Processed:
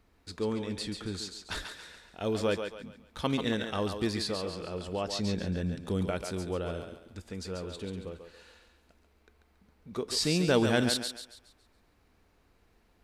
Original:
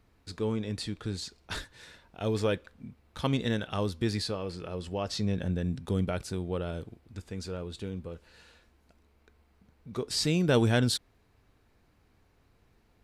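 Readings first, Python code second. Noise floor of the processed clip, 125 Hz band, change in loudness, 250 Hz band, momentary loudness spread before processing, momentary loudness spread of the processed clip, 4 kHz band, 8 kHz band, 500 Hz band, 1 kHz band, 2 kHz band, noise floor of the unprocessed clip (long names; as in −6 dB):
−67 dBFS, −4.5 dB, −0.5 dB, −0.5 dB, 18 LU, 18 LU, +1.0 dB, +1.0 dB, +0.5 dB, +1.0 dB, +1.0 dB, −67 dBFS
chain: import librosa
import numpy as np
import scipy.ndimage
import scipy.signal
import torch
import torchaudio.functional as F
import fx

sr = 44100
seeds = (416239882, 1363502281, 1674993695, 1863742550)

p1 = fx.peak_eq(x, sr, hz=120.0, db=-7.5, octaves=0.67)
y = p1 + fx.echo_thinned(p1, sr, ms=139, feedback_pct=38, hz=330.0, wet_db=-6, dry=0)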